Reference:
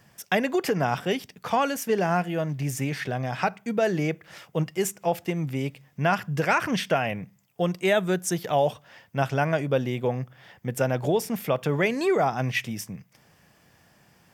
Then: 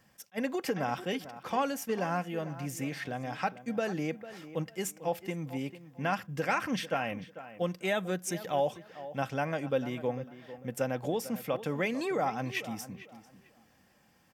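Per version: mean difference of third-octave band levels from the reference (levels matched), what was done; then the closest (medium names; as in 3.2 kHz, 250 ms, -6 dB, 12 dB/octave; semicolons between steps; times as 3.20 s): 3.5 dB: comb 3.8 ms, depth 37%; tape echo 447 ms, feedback 27%, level -13 dB, low-pass 2.4 kHz; attacks held to a fixed rise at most 600 dB/s; trim -7.5 dB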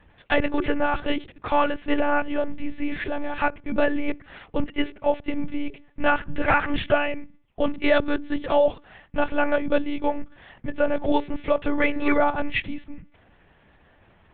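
9.0 dB: distance through air 160 m; hum notches 60/120/180/240/300/360/420 Hz; monotone LPC vocoder at 8 kHz 290 Hz; trim +4 dB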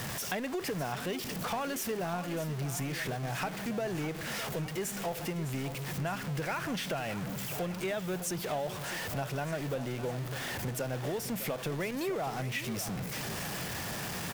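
13.0 dB: jump at every zero crossing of -24.5 dBFS; compression 3:1, threshold -26 dBFS, peak gain reduction 8 dB; feedback delay 607 ms, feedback 51%, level -12 dB; trim -7.5 dB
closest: first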